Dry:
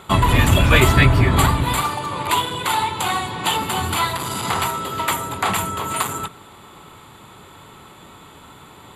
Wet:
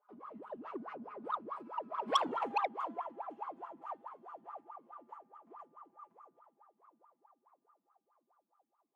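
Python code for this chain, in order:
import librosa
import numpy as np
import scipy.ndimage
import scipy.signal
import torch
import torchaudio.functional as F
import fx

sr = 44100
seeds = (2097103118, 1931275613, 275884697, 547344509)

y = fx.lower_of_two(x, sr, delay_ms=5.4)
y = fx.doppler_pass(y, sr, speed_mps=35, closest_m=2.7, pass_at_s=2.26)
y = fx.low_shelf(y, sr, hz=110.0, db=-12.0)
y = fx.notch(y, sr, hz=3800.0, q=11.0)
y = fx.echo_filtered(y, sr, ms=674, feedback_pct=61, hz=4400.0, wet_db=-15)
y = fx.wah_lfo(y, sr, hz=4.7, low_hz=220.0, high_hz=1300.0, q=17.0)
y = fx.peak_eq(y, sr, hz=720.0, db=7.5, octaves=2.4)
y = fx.transformer_sat(y, sr, knee_hz=2600.0)
y = y * librosa.db_to_amplitude(9.0)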